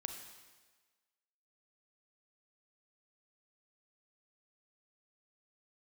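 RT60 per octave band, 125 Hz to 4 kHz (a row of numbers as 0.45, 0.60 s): 1.2, 1.2, 1.4, 1.4, 1.4, 1.3 s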